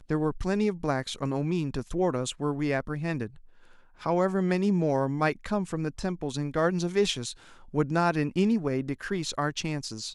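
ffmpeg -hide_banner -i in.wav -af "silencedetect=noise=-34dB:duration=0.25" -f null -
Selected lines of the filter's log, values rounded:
silence_start: 3.26
silence_end: 4.06 | silence_duration: 0.80
silence_start: 7.32
silence_end: 7.74 | silence_duration: 0.42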